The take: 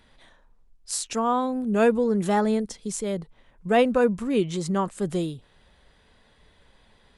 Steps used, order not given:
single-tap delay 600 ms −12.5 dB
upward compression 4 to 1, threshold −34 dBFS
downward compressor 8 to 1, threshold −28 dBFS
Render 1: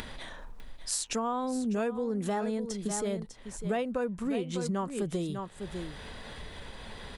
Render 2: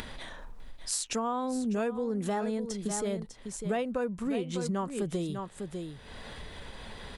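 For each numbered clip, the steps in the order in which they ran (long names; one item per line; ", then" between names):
upward compression, then single-tap delay, then downward compressor
single-tap delay, then upward compression, then downward compressor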